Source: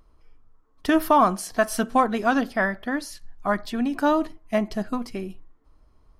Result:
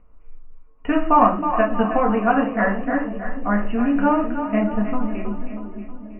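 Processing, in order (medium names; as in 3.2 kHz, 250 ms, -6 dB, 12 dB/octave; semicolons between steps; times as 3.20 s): 3.56–4.23 s: jump at every zero crossing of -34 dBFS; Chebyshev low-pass 2.9 kHz, order 10; on a send: two-band feedback delay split 500 Hz, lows 496 ms, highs 318 ms, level -8.5 dB; on the sum: simulated room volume 170 m³, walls furnished, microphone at 1.8 m; trim -1.5 dB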